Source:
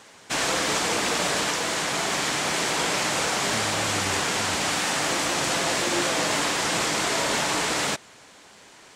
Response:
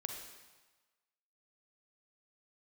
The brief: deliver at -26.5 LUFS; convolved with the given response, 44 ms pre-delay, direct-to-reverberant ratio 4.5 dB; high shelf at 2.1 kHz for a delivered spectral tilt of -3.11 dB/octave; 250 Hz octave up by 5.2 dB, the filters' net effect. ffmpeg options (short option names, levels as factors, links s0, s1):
-filter_complex "[0:a]equalizer=f=250:t=o:g=7,highshelf=f=2100:g=-5.5,asplit=2[s0][s1];[1:a]atrim=start_sample=2205,adelay=44[s2];[s1][s2]afir=irnorm=-1:irlink=0,volume=0.668[s3];[s0][s3]amix=inputs=2:normalize=0,volume=0.75"